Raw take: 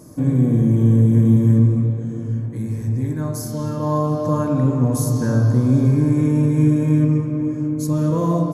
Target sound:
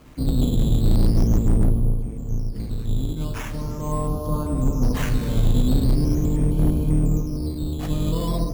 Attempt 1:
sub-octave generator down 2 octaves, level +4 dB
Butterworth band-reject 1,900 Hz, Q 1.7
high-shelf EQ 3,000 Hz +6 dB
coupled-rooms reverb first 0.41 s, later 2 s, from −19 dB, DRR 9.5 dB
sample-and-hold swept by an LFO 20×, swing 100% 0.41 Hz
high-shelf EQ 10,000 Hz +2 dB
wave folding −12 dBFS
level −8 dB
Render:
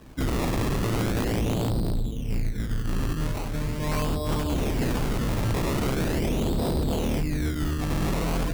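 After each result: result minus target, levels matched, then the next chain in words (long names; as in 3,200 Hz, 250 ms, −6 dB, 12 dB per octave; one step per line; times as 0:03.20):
wave folding: distortion +21 dB; sample-and-hold swept by an LFO: distortion +7 dB
sub-octave generator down 2 octaves, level +4 dB
Butterworth band-reject 1,900 Hz, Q 1.7
high-shelf EQ 3,000 Hz +6 dB
coupled-rooms reverb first 0.41 s, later 2 s, from −19 dB, DRR 9.5 dB
sample-and-hold swept by an LFO 20×, swing 100% 0.41 Hz
high-shelf EQ 10,000 Hz +2 dB
wave folding −3 dBFS
level −8 dB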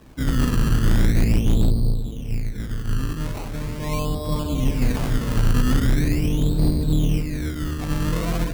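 sample-and-hold swept by an LFO: distortion +7 dB
sub-octave generator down 2 octaves, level +4 dB
Butterworth band-reject 1,900 Hz, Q 1.7
high-shelf EQ 3,000 Hz +6 dB
coupled-rooms reverb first 0.41 s, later 2 s, from −19 dB, DRR 9.5 dB
sample-and-hold swept by an LFO 8×, swing 100% 0.41 Hz
high-shelf EQ 10,000 Hz +2 dB
wave folding −3 dBFS
level −8 dB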